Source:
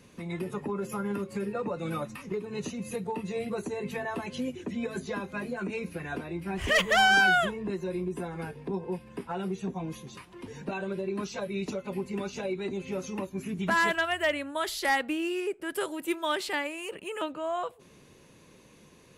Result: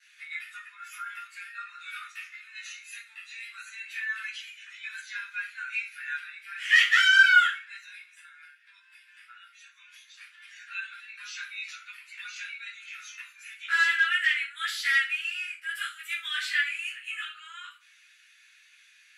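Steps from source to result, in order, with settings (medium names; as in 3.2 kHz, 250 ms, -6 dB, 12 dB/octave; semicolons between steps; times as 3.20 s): steep high-pass 1.4 kHz 72 dB/octave; gate with hold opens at -58 dBFS; low-pass 2.4 kHz 6 dB/octave; 7.98–10.20 s: compression 6:1, threshold -58 dBFS, peak gain reduction 13.5 dB; reverberation RT60 0.40 s, pre-delay 7 ms, DRR -8.5 dB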